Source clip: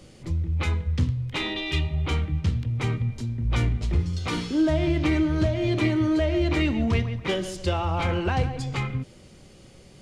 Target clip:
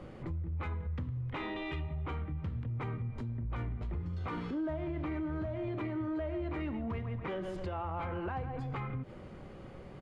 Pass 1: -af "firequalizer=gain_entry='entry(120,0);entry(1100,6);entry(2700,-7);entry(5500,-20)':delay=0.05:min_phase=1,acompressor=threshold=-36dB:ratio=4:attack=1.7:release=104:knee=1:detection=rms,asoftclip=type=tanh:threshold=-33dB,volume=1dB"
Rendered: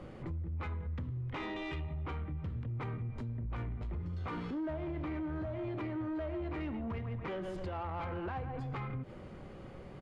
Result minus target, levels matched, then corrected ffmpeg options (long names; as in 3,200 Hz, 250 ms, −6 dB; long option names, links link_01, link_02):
soft clipping: distortion +12 dB
-af "firequalizer=gain_entry='entry(120,0);entry(1100,6);entry(2700,-7);entry(5500,-20)':delay=0.05:min_phase=1,acompressor=threshold=-36dB:ratio=4:attack=1.7:release=104:knee=1:detection=rms,asoftclip=type=tanh:threshold=-25.5dB,volume=1dB"